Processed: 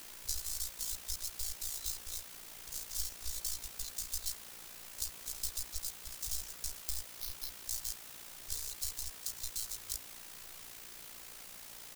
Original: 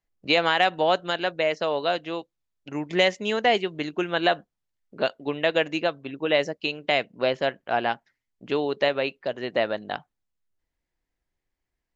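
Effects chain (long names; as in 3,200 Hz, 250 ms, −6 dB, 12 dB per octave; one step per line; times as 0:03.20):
gap after every zero crossing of 0.22 ms
inverse Chebyshev band-stop filter 160–2,300 Hz, stop band 50 dB
comb filter 2.2 ms, depth 64%
downward compressor 6 to 1, threshold −45 dBFS, peak gain reduction 15.5 dB
0:07.07–0:07.64: phaser with its sweep stopped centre 2,200 Hz, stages 6
bit-depth reduction 10 bits, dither triangular
amplitude modulation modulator 58 Hz, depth 40%
level +12.5 dB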